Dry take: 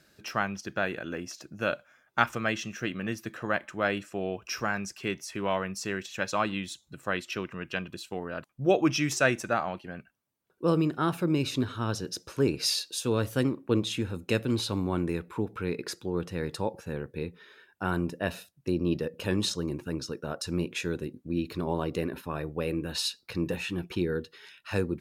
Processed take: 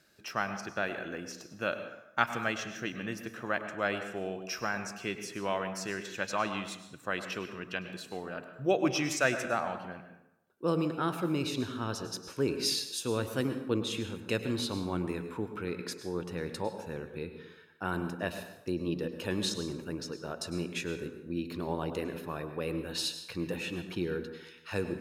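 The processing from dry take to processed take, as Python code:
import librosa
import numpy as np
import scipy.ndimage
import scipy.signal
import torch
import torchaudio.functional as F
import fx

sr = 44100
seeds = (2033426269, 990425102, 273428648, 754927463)

y = fx.low_shelf(x, sr, hz=230.0, db=-5.0)
y = fx.rev_plate(y, sr, seeds[0], rt60_s=0.88, hf_ratio=0.65, predelay_ms=90, drr_db=8.5)
y = y * librosa.db_to_amplitude(-3.0)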